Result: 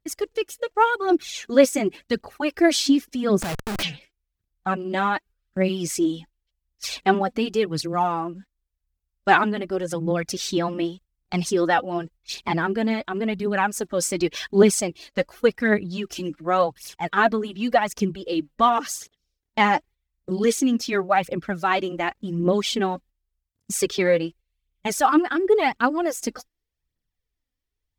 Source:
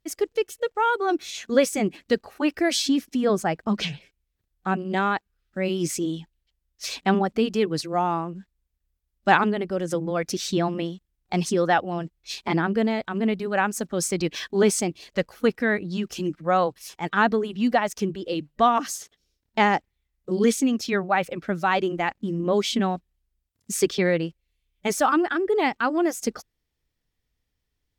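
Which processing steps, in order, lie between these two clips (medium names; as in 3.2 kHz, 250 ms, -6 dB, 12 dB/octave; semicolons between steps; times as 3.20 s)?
gate -44 dBFS, range -8 dB; phaser 0.89 Hz, delay 4.1 ms, feedback 53%; 3.42–3.83 s: Schmitt trigger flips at -36.5 dBFS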